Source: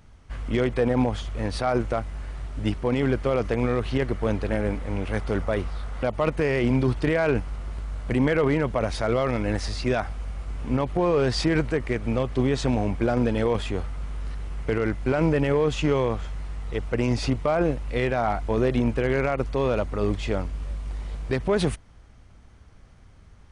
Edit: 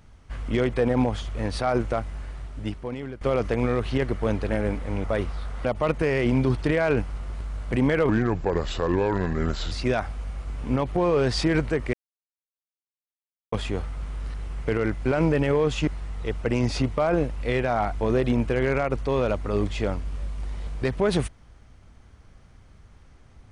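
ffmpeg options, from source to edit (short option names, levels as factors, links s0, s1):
-filter_complex "[0:a]asplit=8[s0][s1][s2][s3][s4][s5][s6][s7];[s0]atrim=end=3.21,asetpts=PTS-STARTPTS,afade=t=out:st=2.1:d=1.11:silence=0.141254[s8];[s1]atrim=start=3.21:end=5.042,asetpts=PTS-STARTPTS,afade=t=in:d=0.004:c=hsin:silence=0.141254[s9];[s2]atrim=start=5.418:end=8.474[s10];[s3]atrim=start=8.47:end=9.72,asetpts=PTS-STARTPTS,asetrate=33957,aresample=44100[s11];[s4]atrim=start=9.716:end=11.94,asetpts=PTS-STARTPTS,afade=t=out:st=2.22:d=0.004:c=hsin[s12];[s5]atrim=start=11.94:end=13.53,asetpts=PTS-STARTPTS,volume=0[s13];[s6]atrim=start=13.53:end=15.882,asetpts=PTS-STARTPTS,afade=t=in:d=0.004:c=hsin[s14];[s7]atrim=start=16.348[s15];[s8][s9]concat=n=2:v=0:a=1[s16];[s16][s10]acrossfade=d=0.004:c1=hsin:c2=hsin[s17];[s17][s11]acrossfade=d=0.004:c1=hsin:c2=hsin[s18];[s12][s13][s14]concat=n=3:v=0:a=1[s19];[s18][s19]acrossfade=d=0.004:c1=hsin:c2=hsin[s20];[s20][s15]acrossfade=d=0.004:c1=hsin:c2=hsin"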